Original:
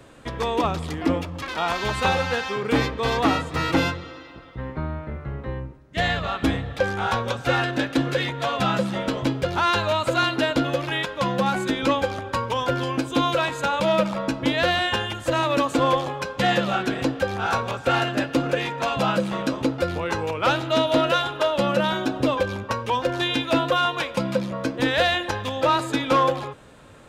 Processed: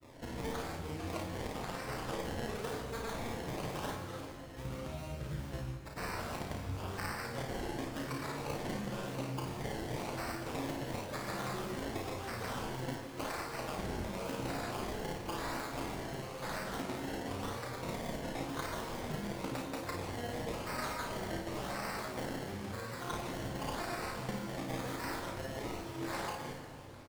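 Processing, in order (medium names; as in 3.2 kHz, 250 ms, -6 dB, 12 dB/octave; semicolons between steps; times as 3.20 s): self-modulated delay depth 0.9 ms; spectral gate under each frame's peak -20 dB strong; resonant high shelf 3.7 kHz +8 dB, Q 1.5; peak limiter -13 dBFS, peak gain reduction 10.5 dB; compression 6:1, threshold -33 dBFS, peak gain reduction 13.5 dB; decimation with a swept rate 25×, swing 100% 0.95 Hz; granulator, pitch spread up and down by 0 st; early reflections 33 ms -5 dB, 54 ms -5.5 dB; plate-style reverb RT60 2.2 s, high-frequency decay 0.9×, DRR 5 dB; trim -5 dB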